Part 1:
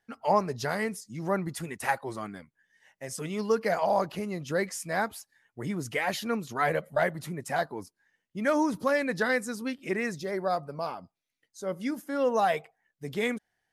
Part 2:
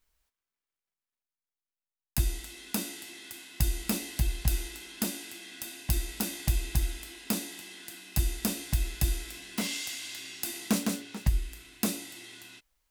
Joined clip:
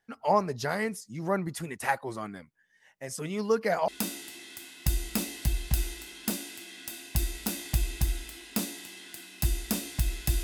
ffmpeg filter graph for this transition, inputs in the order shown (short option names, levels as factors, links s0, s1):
-filter_complex "[0:a]apad=whole_dur=10.43,atrim=end=10.43,atrim=end=3.882[s0];[1:a]atrim=start=2.618:end=9.17[s1];[s0][s1]acrossfade=d=0.004:c1=hsin:c2=hsin"